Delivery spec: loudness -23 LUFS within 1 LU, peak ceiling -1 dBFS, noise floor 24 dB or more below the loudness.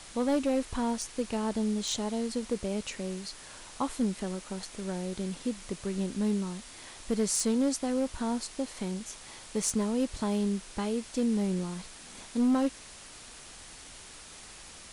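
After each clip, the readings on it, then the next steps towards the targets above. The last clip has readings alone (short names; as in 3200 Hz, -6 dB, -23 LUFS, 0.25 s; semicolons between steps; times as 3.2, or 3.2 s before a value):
clipped 0.5%; flat tops at -21.0 dBFS; noise floor -49 dBFS; noise floor target -56 dBFS; loudness -31.5 LUFS; peak -21.0 dBFS; loudness target -23.0 LUFS
-> clip repair -21 dBFS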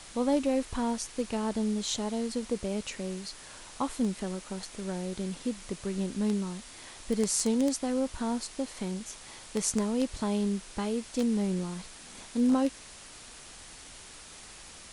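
clipped 0.0%; noise floor -49 dBFS; noise floor target -56 dBFS
-> denoiser 7 dB, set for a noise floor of -49 dBFS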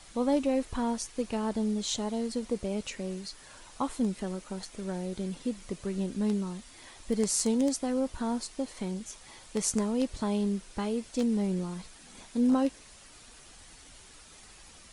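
noise floor -53 dBFS; noise floor target -56 dBFS
-> denoiser 6 dB, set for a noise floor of -53 dBFS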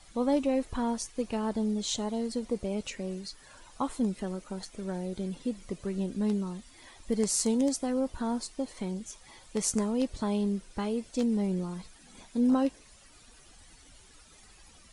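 noise floor -56 dBFS; loudness -31.5 LUFS; peak -11.5 dBFS; loudness target -23.0 LUFS
-> gain +8.5 dB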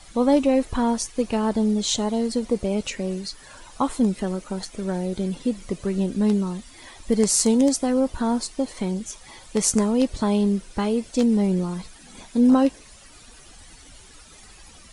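loudness -23.0 LUFS; peak -3.0 dBFS; noise floor -48 dBFS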